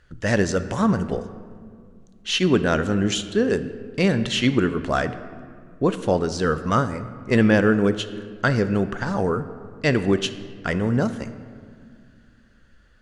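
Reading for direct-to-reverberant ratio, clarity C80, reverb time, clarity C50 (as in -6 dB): 10.5 dB, 13.5 dB, 2.1 s, 12.5 dB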